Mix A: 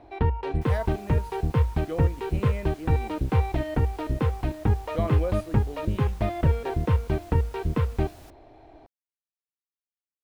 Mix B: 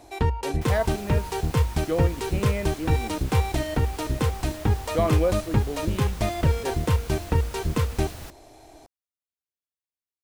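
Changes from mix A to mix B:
speech +6.5 dB; first sound: remove distance through air 390 m; second sound +10.5 dB

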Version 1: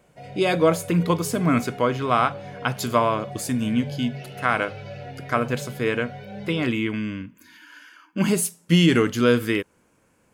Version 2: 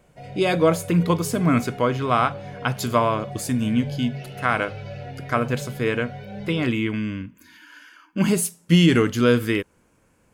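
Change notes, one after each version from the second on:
master: add bass shelf 83 Hz +9.5 dB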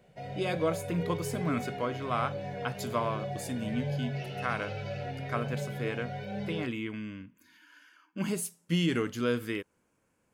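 speech -11.0 dB; master: add bass shelf 83 Hz -9.5 dB

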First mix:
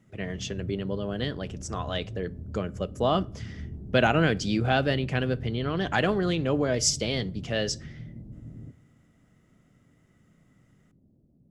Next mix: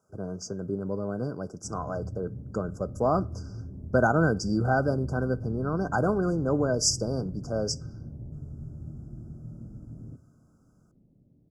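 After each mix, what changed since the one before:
background: entry +1.45 s; master: add brick-wall FIR band-stop 1.6–4.6 kHz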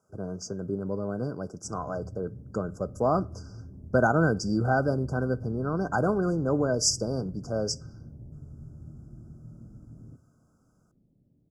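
background -4.5 dB

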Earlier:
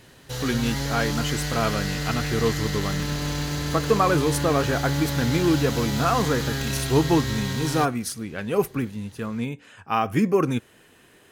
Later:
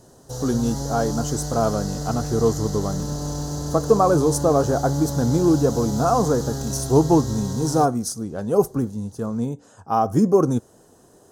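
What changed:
speech +3.5 dB; master: add FFT filter 330 Hz 0 dB, 730 Hz +3 dB, 1.4 kHz -8 dB, 2.3 kHz -26 dB, 6 kHz +3 dB, 15 kHz -6 dB

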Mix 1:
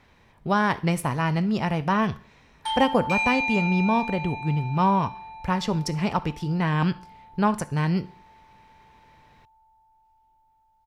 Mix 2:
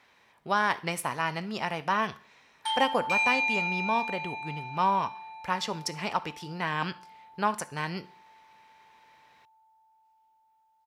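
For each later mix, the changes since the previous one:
master: add high-pass 850 Hz 6 dB/octave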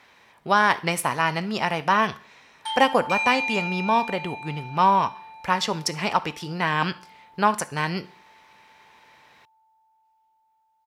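speech +7.0 dB

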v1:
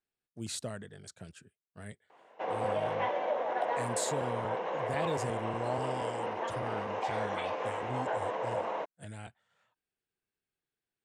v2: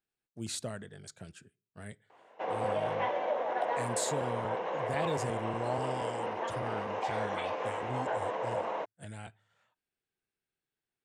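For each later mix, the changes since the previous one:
reverb: on, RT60 0.40 s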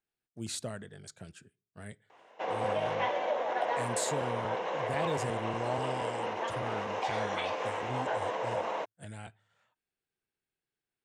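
background: add treble shelf 3.2 kHz +11 dB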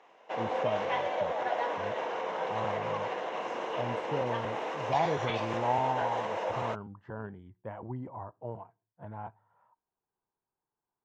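speech: add resonant low-pass 970 Hz, resonance Q 6.7; background: entry -2.10 s

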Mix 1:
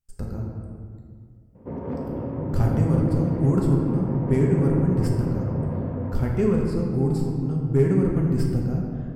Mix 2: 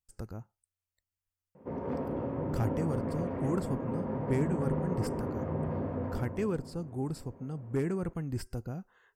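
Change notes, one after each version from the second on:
speech: send off; master: add bass shelf 320 Hz -8.5 dB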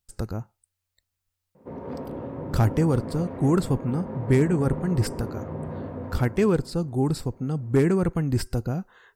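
speech +11.0 dB; master: add peaking EQ 3.9 kHz +8 dB 0.28 oct

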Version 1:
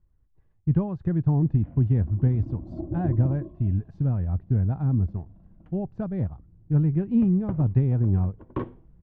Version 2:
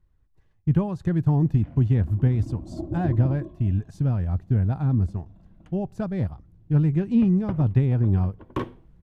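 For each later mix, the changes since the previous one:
speech: send +8.0 dB; master: remove tape spacing loss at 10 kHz 40 dB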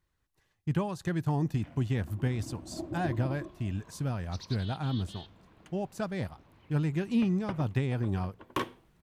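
second sound: unmuted; master: add tilt EQ +3.5 dB/octave

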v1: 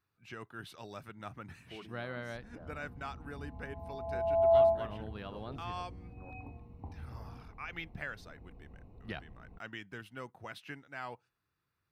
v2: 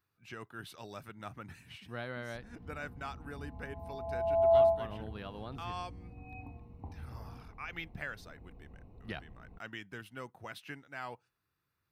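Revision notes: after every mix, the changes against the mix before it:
speech: add treble shelf 8.6 kHz +6.5 dB; first sound: muted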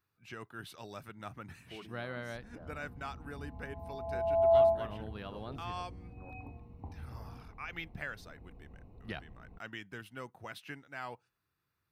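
first sound: unmuted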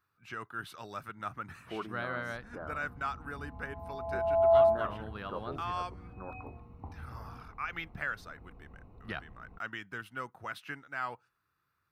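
first sound +9.0 dB; master: add peaking EQ 1.3 kHz +9.5 dB 0.86 oct

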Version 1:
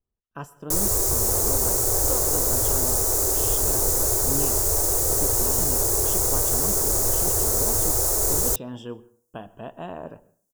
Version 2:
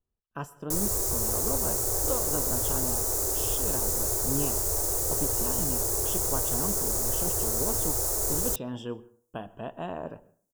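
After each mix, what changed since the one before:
background -6.0 dB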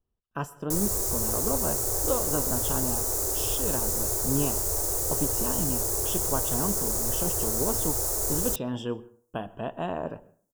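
speech +4.0 dB

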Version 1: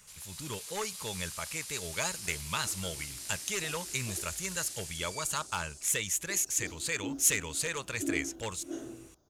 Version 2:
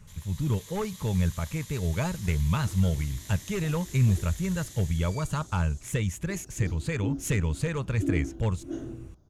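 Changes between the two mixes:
speech: add tilt shelf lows +5.5 dB, about 1.4 kHz; first sound: add rippled EQ curve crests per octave 1.1, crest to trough 9 dB; master: add tone controls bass +14 dB, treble -6 dB

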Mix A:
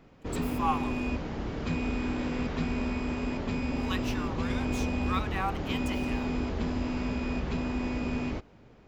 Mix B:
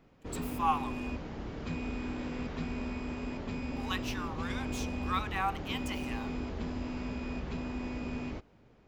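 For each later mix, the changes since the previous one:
background -6.0 dB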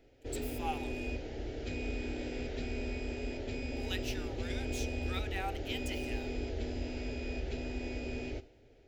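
background: send on; master: add static phaser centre 450 Hz, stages 4

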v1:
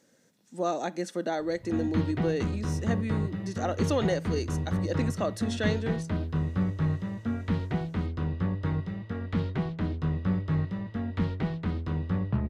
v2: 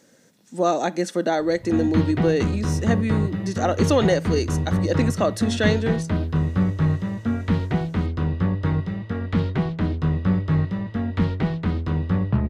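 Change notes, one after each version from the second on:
speech +8.5 dB; background +7.0 dB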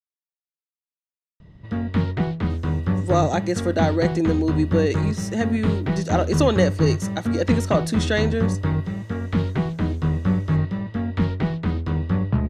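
speech: entry +2.50 s

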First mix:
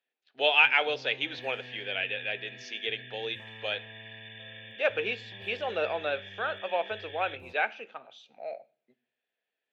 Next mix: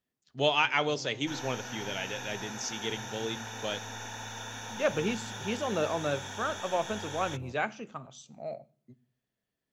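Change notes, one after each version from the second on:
speech: remove cabinet simulation 470–4000 Hz, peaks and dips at 480 Hz +5 dB, 780 Hz +4 dB, 1.1 kHz -7 dB, 1.6 kHz +5 dB, 2.5 kHz +9 dB, 3.7 kHz +4 dB; second sound: remove brick-wall FIR band-pass 1.6–3.6 kHz; master: add bass shelf 150 Hz +8 dB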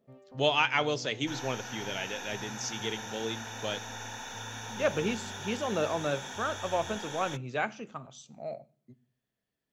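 first sound: entry -0.55 s

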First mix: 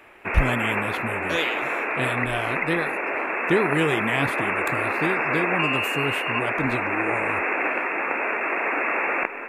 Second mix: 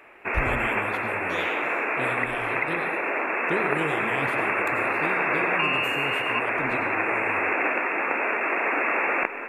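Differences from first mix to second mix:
speech -11.5 dB; reverb: on, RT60 0.55 s

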